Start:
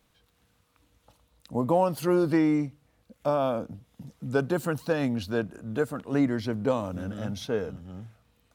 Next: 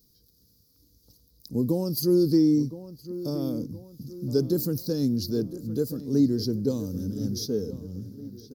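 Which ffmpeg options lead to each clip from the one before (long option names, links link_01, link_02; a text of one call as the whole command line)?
ffmpeg -i in.wav -filter_complex "[0:a]firequalizer=gain_entry='entry(410,0);entry(650,-22);entry(2700,-25);entry(4800,12);entry(8100,-5);entry(13000,13)':delay=0.05:min_phase=1,asplit=2[link_01][link_02];[link_02]adelay=1017,lowpass=frequency=2700:poles=1,volume=-14dB,asplit=2[link_03][link_04];[link_04]adelay=1017,lowpass=frequency=2700:poles=1,volume=0.47,asplit=2[link_05][link_06];[link_06]adelay=1017,lowpass=frequency=2700:poles=1,volume=0.47,asplit=2[link_07][link_08];[link_08]adelay=1017,lowpass=frequency=2700:poles=1,volume=0.47[link_09];[link_01][link_03][link_05][link_07][link_09]amix=inputs=5:normalize=0,volume=3dB" out.wav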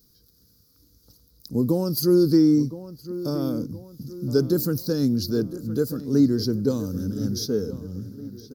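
ffmpeg -i in.wav -af "equalizer=frequency=1400:width=2:gain=10.5,volume=3dB" out.wav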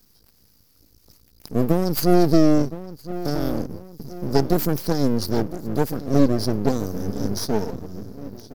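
ffmpeg -i in.wav -af "equalizer=frequency=120:width=7.1:gain=-5,aeval=exprs='max(val(0),0)':channel_layout=same,volume=5.5dB" out.wav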